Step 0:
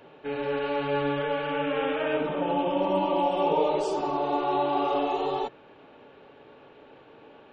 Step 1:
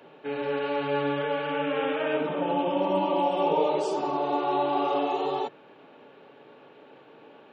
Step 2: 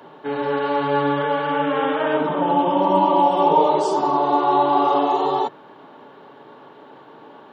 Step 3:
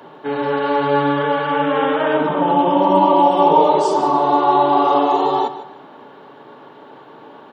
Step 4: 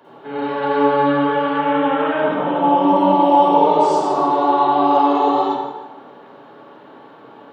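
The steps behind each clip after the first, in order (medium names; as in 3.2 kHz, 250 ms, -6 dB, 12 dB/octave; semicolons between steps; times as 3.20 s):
high-pass 130 Hz 24 dB/octave
graphic EQ with 31 bands 500 Hz -5 dB, 1 kHz +8 dB, 2.5 kHz -11 dB; trim +7.5 dB
feedback delay 153 ms, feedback 29%, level -13.5 dB; trim +3 dB
reverberation RT60 1.0 s, pre-delay 43 ms, DRR -7.5 dB; trim -9 dB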